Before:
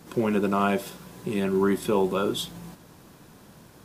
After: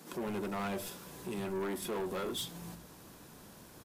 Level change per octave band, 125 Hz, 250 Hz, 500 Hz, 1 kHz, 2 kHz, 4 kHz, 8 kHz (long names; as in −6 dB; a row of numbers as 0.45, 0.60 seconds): −12.5, −13.5, −12.5, −12.0, −9.5, −7.0, −4.0 decibels